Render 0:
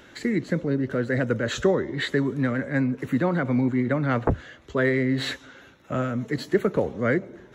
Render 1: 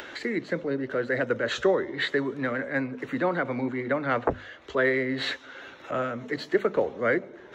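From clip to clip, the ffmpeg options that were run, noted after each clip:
-filter_complex "[0:a]acrossover=split=330 5500:gain=0.224 1 0.178[a][b][c];[a][b][c]amix=inputs=3:normalize=0,bandreject=f=50:t=h:w=6,bandreject=f=100:t=h:w=6,bandreject=f=150:t=h:w=6,bandreject=f=200:t=h:w=6,bandreject=f=250:t=h:w=6,acompressor=mode=upward:threshold=-34dB:ratio=2.5,volume=1dB"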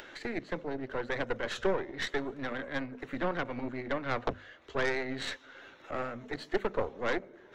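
-af "aeval=exprs='0.335*(cos(1*acos(clip(val(0)/0.335,-1,1)))-cos(1*PI/2))+0.0596*(cos(6*acos(clip(val(0)/0.335,-1,1)))-cos(6*PI/2))':c=same,volume=-8dB"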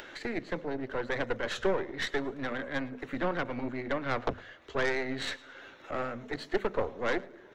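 -filter_complex "[0:a]asplit=2[a][b];[b]asoftclip=type=tanh:threshold=-30dB,volume=-11dB[c];[a][c]amix=inputs=2:normalize=0,aecho=1:1:109|218:0.075|0.0217"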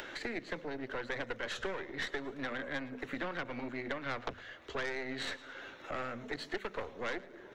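-filter_complex "[0:a]acrossover=split=240|1500[a][b][c];[a]acompressor=threshold=-48dB:ratio=4[d];[b]acompressor=threshold=-42dB:ratio=4[e];[c]acompressor=threshold=-41dB:ratio=4[f];[d][e][f]amix=inputs=3:normalize=0,volume=1.5dB"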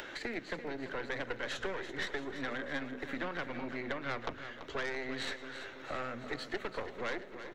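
-af "aecho=1:1:336|672|1008|1344|1680|2016:0.282|0.155|0.0853|0.0469|0.0258|0.0142"

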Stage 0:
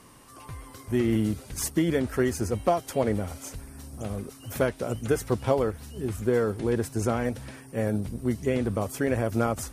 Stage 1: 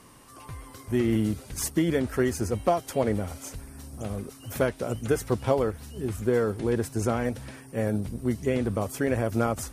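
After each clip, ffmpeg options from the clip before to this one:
-af anull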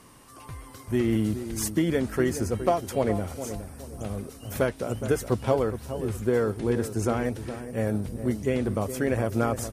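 -filter_complex "[0:a]asplit=2[a][b];[b]adelay=416,lowpass=f=1.1k:p=1,volume=-10dB,asplit=2[c][d];[d]adelay=416,lowpass=f=1.1k:p=1,volume=0.37,asplit=2[e][f];[f]adelay=416,lowpass=f=1.1k:p=1,volume=0.37,asplit=2[g][h];[h]adelay=416,lowpass=f=1.1k:p=1,volume=0.37[i];[a][c][e][g][i]amix=inputs=5:normalize=0"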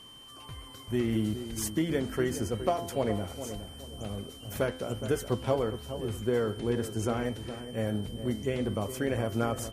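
-af "bandreject=f=85.41:t=h:w=4,bandreject=f=170.82:t=h:w=4,bandreject=f=256.23:t=h:w=4,bandreject=f=341.64:t=h:w=4,bandreject=f=427.05:t=h:w=4,bandreject=f=512.46:t=h:w=4,bandreject=f=597.87:t=h:w=4,bandreject=f=683.28:t=h:w=4,bandreject=f=768.69:t=h:w=4,bandreject=f=854.1:t=h:w=4,bandreject=f=939.51:t=h:w=4,bandreject=f=1.02492k:t=h:w=4,bandreject=f=1.11033k:t=h:w=4,bandreject=f=1.19574k:t=h:w=4,bandreject=f=1.28115k:t=h:w=4,bandreject=f=1.36656k:t=h:w=4,bandreject=f=1.45197k:t=h:w=4,bandreject=f=1.53738k:t=h:w=4,bandreject=f=1.62279k:t=h:w=4,bandreject=f=1.7082k:t=h:w=4,bandreject=f=1.79361k:t=h:w=4,bandreject=f=1.87902k:t=h:w=4,bandreject=f=1.96443k:t=h:w=4,bandreject=f=2.04984k:t=h:w=4,bandreject=f=2.13525k:t=h:w=4,bandreject=f=2.22066k:t=h:w=4,bandreject=f=2.30607k:t=h:w=4,bandreject=f=2.39148k:t=h:w=4,aeval=exprs='val(0)+0.00562*sin(2*PI*3100*n/s)':c=same,volume=-4dB"

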